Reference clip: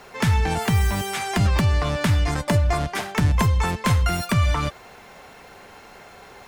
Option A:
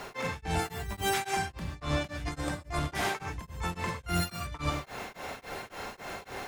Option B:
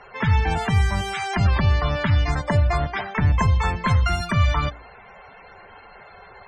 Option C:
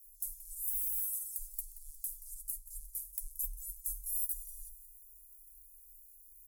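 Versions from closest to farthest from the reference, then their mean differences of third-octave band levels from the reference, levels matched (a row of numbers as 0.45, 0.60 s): B, A, C; 5.5, 9.0, 26.0 dB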